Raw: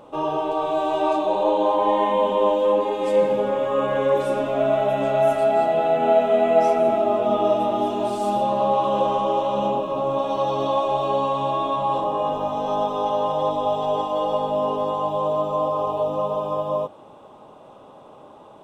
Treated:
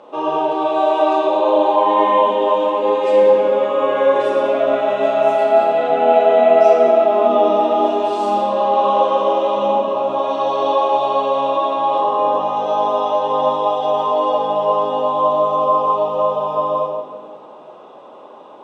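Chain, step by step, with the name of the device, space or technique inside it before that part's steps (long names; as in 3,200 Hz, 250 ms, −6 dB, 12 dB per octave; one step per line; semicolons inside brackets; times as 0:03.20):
supermarket ceiling speaker (band-pass filter 320–5,300 Hz; convolution reverb RT60 1.6 s, pre-delay 30 ms, DRR 0.5 dB)
level +3.5 dB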